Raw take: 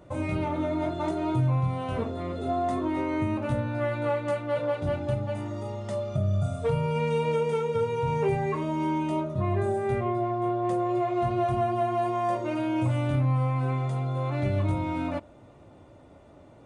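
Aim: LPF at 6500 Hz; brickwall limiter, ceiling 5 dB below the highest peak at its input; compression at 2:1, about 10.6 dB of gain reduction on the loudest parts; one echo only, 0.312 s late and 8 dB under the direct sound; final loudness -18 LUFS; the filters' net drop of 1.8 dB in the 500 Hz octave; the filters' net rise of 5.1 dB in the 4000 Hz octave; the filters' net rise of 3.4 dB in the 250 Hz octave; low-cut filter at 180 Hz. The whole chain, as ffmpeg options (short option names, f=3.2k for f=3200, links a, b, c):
-af "highpass=180,lowpass=6.5k,equalizer=f=250:t=o:g=8.5,equalizer=f=500:t=o:g=-5.5,equalizer=f=4k:t=o:g=7.5,acompressor=threshold=-42dB:ratio=2,alimiter=level_in=6.5dB:limit=-24dB:level=0:latency=1,volume=-6.5dB,aecho=1:1:312:0.398,volume=20.5dB"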